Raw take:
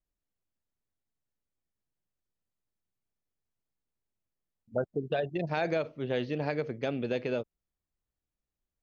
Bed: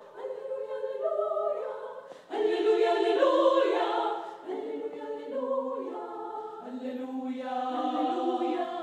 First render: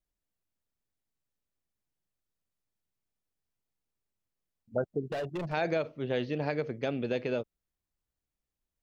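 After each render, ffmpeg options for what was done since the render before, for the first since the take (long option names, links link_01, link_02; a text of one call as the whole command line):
ffmpeg -i in.wav -filter_complex "[0:a]asplit=3[link_01][link_02][link_03];[link_01]afade=type=out:start_time=5.01:duration=0.02[link_04];[link_02]volume=31dB,asoftclip=hard,volume=-31dB,afade=type=in:start_time=5.01:duration=0.02,afade=type=out:start_time=5.52:duration=0.02[link_05];[link_03]afade=type=in:start_time=5.52:duration=0.02[link_06];[link_04][link_05][link_06]amix=inputs=3:normalize=0" out.wav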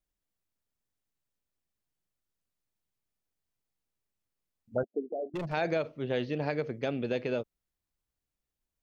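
ffmpeg -i in.wav -filter_complex "[0:a]asettb=1/sr,asplit=3[link_01][link_02][link_03];[link_01]atrim=end=4.834[link_04];[link_02]atrim=start=4.83:end=5.34,asetpts=PTS-STARTPTS,afade=type=in:duration=0.004:curve=qsin,afade=type=out:start_time=0.506:duration=0.004:curve=qsin,asuperpass=centerf=410:order=12:qfactor=0.81[link_05];[link_03]atrim=start=5.336[link_06];[link_04][link_05]acrossfade=duration=0.004:curve1=hsin:curve2=qsin[link_07];[link_07][link_06]acrossfade=duration=0.004:curve1=qsin:curve2=hsin" out.wav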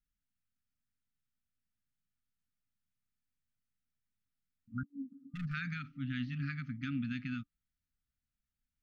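ffmpeg -i in.wav -af "afftfilt=real='re*(1-between(b*sr/4096,290,1200))':imag='im*(1-between(b*sr/4096,290,1200))':win_size=4096:overlap=0.75,highshelf=frequency=2800:gain=-10.5" out.wav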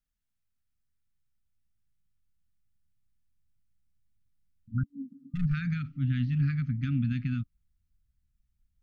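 ffmpeg -i in.wav -af "asubboost=boost=9:cutoff=150" out.wav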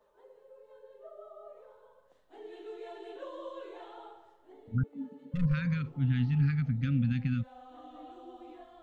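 ffmpeg -i in.wav -i bed.wav -filter_complex "[1:a]volume=-20dB[link_01];[0:a][link_01]amix=inputs=2:normalize=0" out.wav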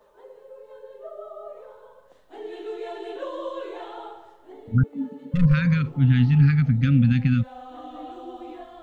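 ffmpeg -i in.wav -af "volume=10.5dB" out.wav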